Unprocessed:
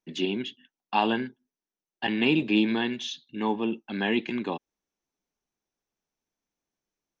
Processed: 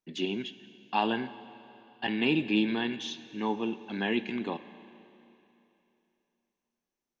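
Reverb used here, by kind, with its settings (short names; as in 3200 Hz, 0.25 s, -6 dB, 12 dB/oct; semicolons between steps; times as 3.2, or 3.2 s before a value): Schroeder reverb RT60 3 s, combs from 30 ms, DRR 13.5 dB; gain -3.5 dB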